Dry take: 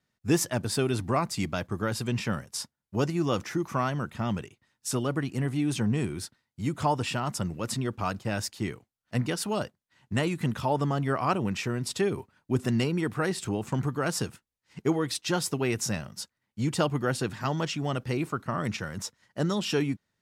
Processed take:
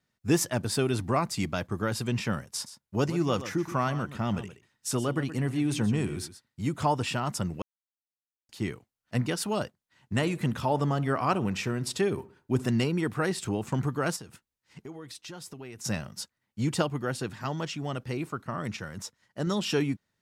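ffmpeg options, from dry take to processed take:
-filter_complex "[0:a]asettb=1/sr,asplit=3[a][b][c];[a]atrim=end=2.534[d];[b]atrim=start=2.53:end=6.68,asetpts=PTS-STARTPTS,afade=t=in:d=0.004:c=qsin,afade=t=out:st=4.146:d=0.004:c=qsin,aecho=1:1:124:0.224,atrim=end_sample=183015[e];[c]atrim=start=6.676[f];[d][e]acrossfade=d=0.004:c1=hsin:c2=qsin[g];[g][f]acrossfade=d=0.004:c1=qsin:c2=hsin,asettb=1/sr,asplit=3[h][i][j];[h]atrim=end=10.154[k];[i]atrim=start=10.15:end=12.68,asetpts=PTS-STARTPTS,afade=t=in:d=0.004:c=qsin,afade=t=out:st=2.526:d=0.004:c=qsin,asplit=2[l][m];[m]adelay=63,lowpass=f=2k:p=1,volume=-18dB,asplit=2[n][o];[o]adelay=63,lowpass=f=2k:p=1,volume=0.46,asplit=2[p][q];[q]adelay=63,lowpass=f=2k:p=1,volume=0.46,asplit=2[r][s];[s]adelay=63,lowpass=f=2k:p=1,volume=0.46[t];[l][n][p][r][t]amix=inputs=5:normalize=0,atrim=end_sample=111573[u];[j]atrim=start=12.676[v];[k][u]acrossfade=d=0.004:c1=hsin:c2=qsin[w];[w][v]acrossfade=d=0.004:c1=qsin:c2=hsin,asplit=3[x][y][z];[x]afade=t=out:st=14.15:d=0.02[aa];[y]acompressor=threshold=-42dB:ratio=4:attack=3.2:release=140:knee=1:detection=peak,afade=t=in:st=14.15:d=0.02,afade=t=out:st=15.84:d=0.02[ab];[z]afade=t=in:st=15.84:d=0.02[ac];[aa][ab][ac]amix=inputs=3:normalize=0,asplit=5[ad][ae][af][ag][ah];[ad]atrim=end=7.62,asetpts=PTS-STARTPTS,afade=t=out:st=7.616:d=0.004:c=hsin[ai];[ae]atrim=start=7.62:end=8.49,asetpts=PTS-STARTPTS,volume=0[aj];[af]atrim=start=8.49:end=16.822,asetpts=PTS-STARTPTS,afade=t=in:d=0.004:c=hsin[ak];[ag]atrim=start=16.818:end=19.472,asetpts=PTS-STARTPTS,volume=-3.5dB[al];[ah]atrim=start=19.468[am];[ai][aj][ak]concat=n=3:v=0:a=1[an];[an][al]acrossfade=d=0.004:c1=hsin:c2=hsin[ao];[ao][am]acrossfade=d=0.004:c1=hsin:c2=hsin"

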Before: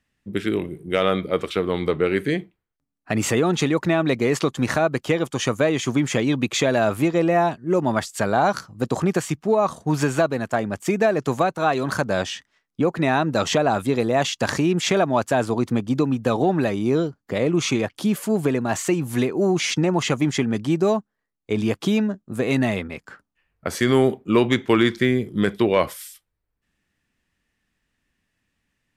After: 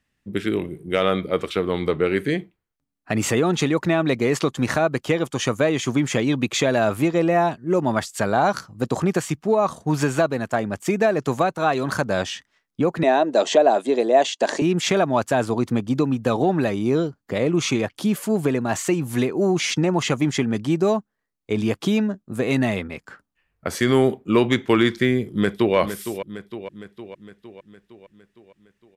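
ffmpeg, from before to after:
-filter_complex "[0:a]asettb=1/sr,asplit=3[a][b][c];[a]atrim=end=13.034[d];[b]atrim=start=13.03:end=14.62,asetpts=PTS-STARTPTS,afade=t=in:d=0.004:c=qsin,afade=t=out:st=1.586:d=0.004:c=qsin,highpass=f=260:w=0.5412,highpass=f=260:w=1.3066,equalizer=f=390:t=q:w=4:g=4,equalizer=f=640:t=q:w=4:g=8,equalizer=f=1.3k:t=q:w=4:g=-9,equalizer=f=2.3k:t=q:w=4:g=-4,equalizer=f=5.3k:t=q:w=4:g=-4,lowpass=f=8.7k:w=0.5412,lowpass=f=8.7k:w=1.3066[e];[c]atrim=start=14.616[f];[d][e]acrossfade=d=0.004:c1=hsin:c2=qsin[g];[g][f]acrossfade=d=0.004:c1=qsin:c2=hsin,asplit=2[h][i];[i]afade=t=in:st=25.25:d=0.01,afade=t=out:st=25.76:d=0.01,aecho=0:1:460|920|1380|1840|2300|2760|3220:0.316228|0.189737|0.113842|0.0683052|0.0409831|0.0245899|0.0147539[j];[h][j]amix=inputs=2:normalize=0"

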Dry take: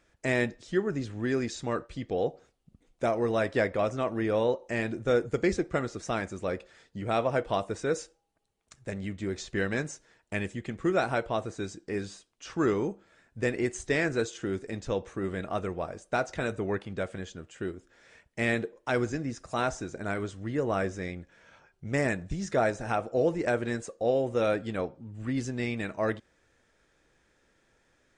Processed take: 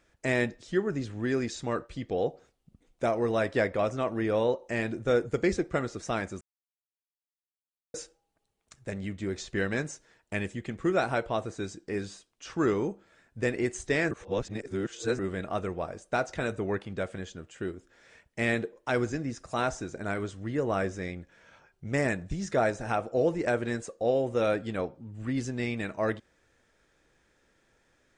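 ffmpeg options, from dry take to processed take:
-filter_complex "[0:a]asplit=5[a][b][c][d][e];[a]atrim=end=6.41,asetpts=PTS-STARTPTS,afade=t=out:st=6.406:d=0.004:c=hsin[f];[b]atrim=start=6.41:end=7.94,asetpts=PTS-STARTPTS,volume=0[g];[c]atrim=start=7.94:end=14.112,asetpts=PTS-STARTPTS,afade=t=in:d=0.004:c=hsin[h];[d]atrim=start=14.108:end=15.192,asetpts=PTS-STARTPTS,areverse[i];[e]atrim=start=15.188[j];[f][g][h]concat=n=3:v=0:a=1[k];[k][i]acrossfade=d=0.004:c1=hsin:c2=hsin[l];[l][j]acrossfade=d=0.004:c1=hsin:c2=hsin"

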